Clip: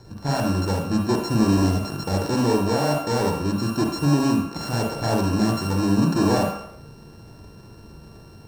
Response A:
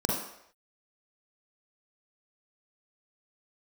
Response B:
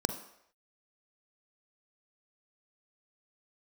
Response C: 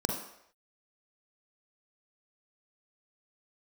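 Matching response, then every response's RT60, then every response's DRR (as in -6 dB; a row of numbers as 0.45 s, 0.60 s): C; no single decay rate, no single decay rate, no single decay rate; -3.5 dB, 7.0 dB, 0.5 dB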